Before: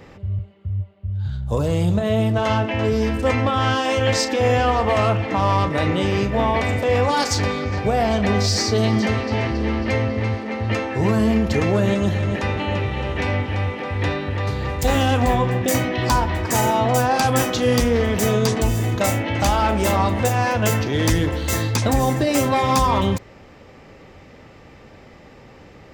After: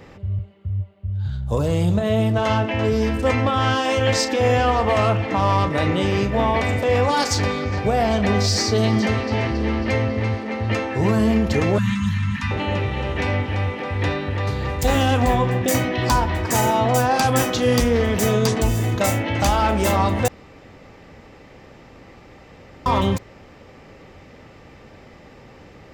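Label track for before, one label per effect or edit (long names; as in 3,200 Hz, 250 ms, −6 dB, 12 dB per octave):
11.780000	12.510000	Chebyshev band-stop filter 250–960 Hz, order 4
20.280000	22.860000	fill with room tone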